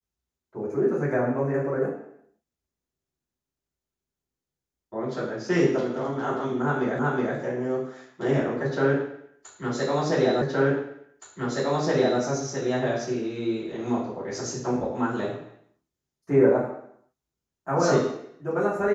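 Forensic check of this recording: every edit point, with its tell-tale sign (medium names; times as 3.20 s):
6.99 s: repeat of the last 0.37 s
10.42 s: repeat of the last 1.77 s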